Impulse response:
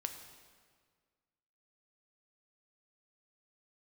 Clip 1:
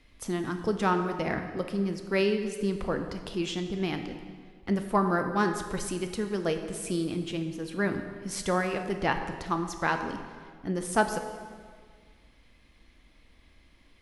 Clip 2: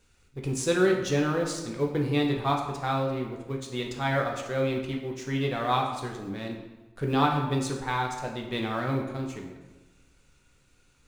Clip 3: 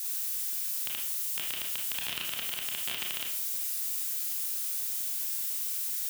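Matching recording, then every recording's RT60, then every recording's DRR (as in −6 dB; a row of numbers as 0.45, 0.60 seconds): 1; 1.8, 1.2, 0.50 seconds; 5.5, 0.0, −1.0 decibels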